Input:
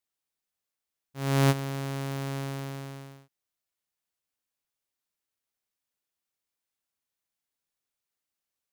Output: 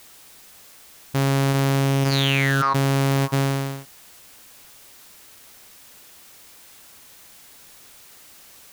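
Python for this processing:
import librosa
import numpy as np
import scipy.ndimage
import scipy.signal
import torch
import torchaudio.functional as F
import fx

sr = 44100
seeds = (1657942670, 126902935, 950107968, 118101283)

y = fx.bandpass_q(x, sr, hz=fx.line((2.03, 5500.0), (2.74, 1000.0)), q=12.0, at=(2.03, 2.74), fade=0.02)
y = y + 10.0 ** (-21.0 / 20.0) * np.pad(y, (int(577 * sr / 1000.0), 0))[:len(y)]
y = fx.env_flatten(y, sr, amount_pct=100)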